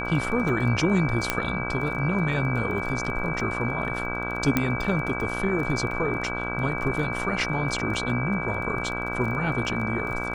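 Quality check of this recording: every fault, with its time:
buzz 60 Hz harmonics 27 -32 dBFS
crackle 15/s -32 dBFS
tone 2300 Hz -31 dBFS
1.3 pop -6 dBFS
4.57 pop -8 dBFS
5.91 gap 3 ms

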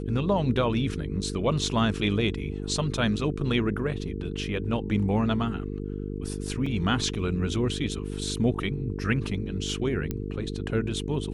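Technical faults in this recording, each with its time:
buzz 50 Hz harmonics 9 -33 dBFS
6.66 gap 3.9 ms
10.11 pop -16 dBFS

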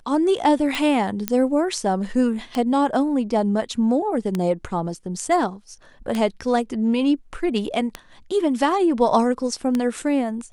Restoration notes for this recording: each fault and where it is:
tick 33 1/3 rpm
1.28 pop -5 dBFS

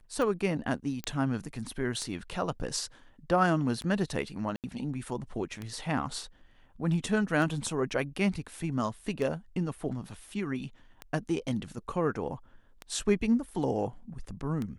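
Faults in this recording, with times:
tick 33 1/3 rpm
1.04 pop -18 dBFS
4.56–4.64 gap 78 ms

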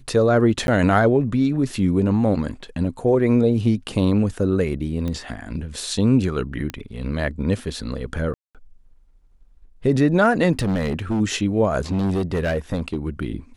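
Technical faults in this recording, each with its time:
0.67–0.68 gap 11 ms
5.08 pop -16 dBFS
6.7 pop -14 dBFS
8.34–8.55 gap 0.207 s
10.52–11.21 clipped -18.5 dBFS
11.91–13.08 clipped -18 dBFS

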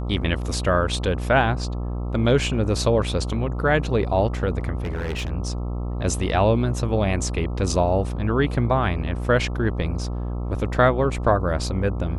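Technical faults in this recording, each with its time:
buzz 60 Hz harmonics 22 -27 dBFS
4.82–5.32 clipped -23.5 dBFS

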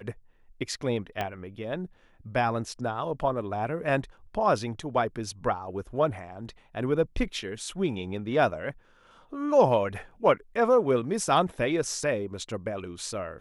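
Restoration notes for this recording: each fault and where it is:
1.21 pop -16 dBFS

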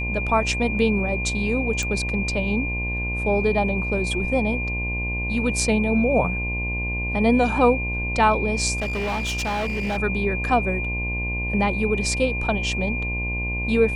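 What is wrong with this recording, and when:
buzz 60 Hz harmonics 18 -28 dBFS
tone 2400 Hz -27 dBFS
1.83 pop -14 dBFS
8.76–9.98 clipped -22 dBFS

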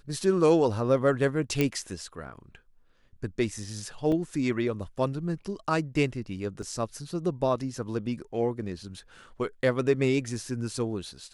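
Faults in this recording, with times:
1.61 pop -11 dBFS
4.12 gap 2.4 ms
6.62 gap 2.2 ms

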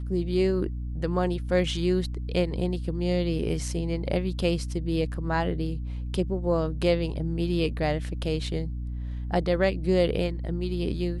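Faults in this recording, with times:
hum 60 Hz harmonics 5 -32 dBFS

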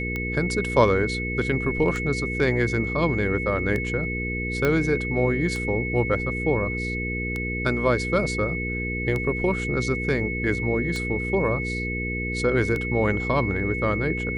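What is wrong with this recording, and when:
hum 60 Hz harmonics 8 -30 dBFS
tick 33 1/3 rpm -16 dBFS
tone 2200 Hz -29 dBFS
4.65 pop -10 dBFS

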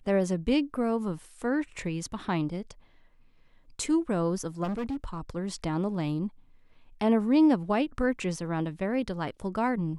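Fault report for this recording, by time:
4.63–5.3 clipped -28.5 dBFS

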